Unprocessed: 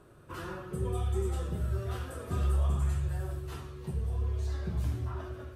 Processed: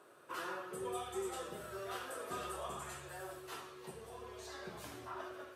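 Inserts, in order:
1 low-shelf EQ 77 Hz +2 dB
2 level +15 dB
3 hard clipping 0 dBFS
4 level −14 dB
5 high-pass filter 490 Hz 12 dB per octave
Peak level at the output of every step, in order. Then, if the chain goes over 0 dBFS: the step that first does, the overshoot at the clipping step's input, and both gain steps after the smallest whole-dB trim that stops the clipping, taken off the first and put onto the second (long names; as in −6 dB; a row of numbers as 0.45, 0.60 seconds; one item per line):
−19.0, −4.0, −4.0, −18.0, −29.5 dBFS
no step passes full scale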